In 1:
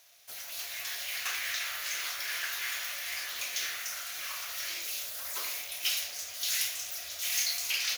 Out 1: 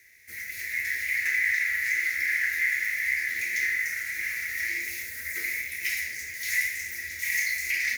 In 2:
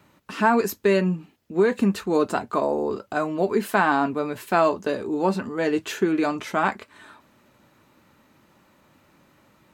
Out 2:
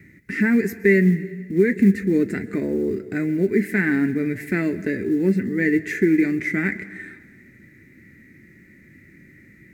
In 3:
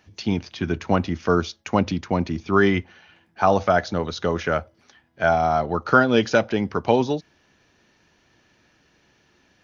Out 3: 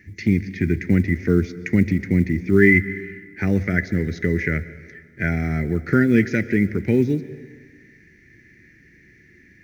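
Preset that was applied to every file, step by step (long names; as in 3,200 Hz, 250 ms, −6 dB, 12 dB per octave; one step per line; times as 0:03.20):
bass and treble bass +3 dB, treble +11 dB
harmonic and percussive parts rebalanced harmonic +3 dB
drawn EQ curve 380 Hz 0 dB, 680 Hz −24 dB, 1,100 Hz −30 dB, 2,000 Hz +12 dB, 3,000 Hz −22 dB, 5,000 Hz −20 dB
in parallel at +1 dB: downward compressor 16 to 1, threshold −31 dBFS
on the sum: log-companded quantiser 8 bits
dense smooth reverb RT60 1.6 s, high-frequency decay 0.9×, pre-delay 110 ms, DRR 16 dB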